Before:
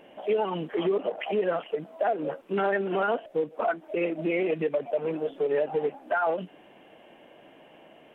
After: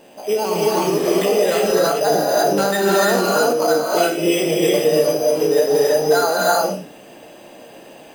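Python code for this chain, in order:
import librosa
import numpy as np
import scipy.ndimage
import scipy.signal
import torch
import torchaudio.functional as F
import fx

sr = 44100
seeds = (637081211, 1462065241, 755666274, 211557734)

y = fx.spec_trails(x, sr, decay_s=0.37)
y = np.repeat(y[::8], 8)[:len(y)]
y = fx.notch(y, sr, hz=2200.0, q=19.0)
y = fx.rev_gated(y, sr, seeds[0], gate_ms=380, shape='rising', drr_db=-4.0)
y = fx.sustainer(y, sr, db_per_s=35.0, at=(1.65, 3.71))
y = F.gain(torch.from_numpy(y), 4.5).numpy()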